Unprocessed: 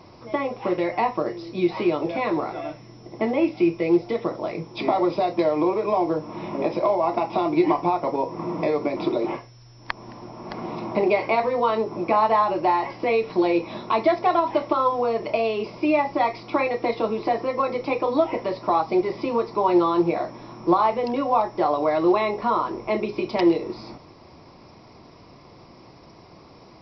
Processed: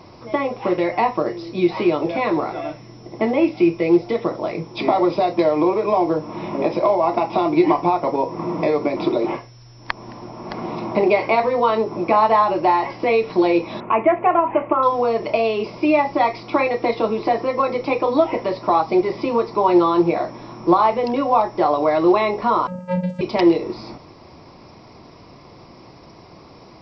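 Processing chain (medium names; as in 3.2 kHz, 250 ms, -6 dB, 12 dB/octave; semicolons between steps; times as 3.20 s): 13.80–14.83 s: elliptic low-pass 2.7 kHz, stop band 40 dB; 22.67–23.21 s: vocoder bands 8, square 181 Hz; trim +4 dB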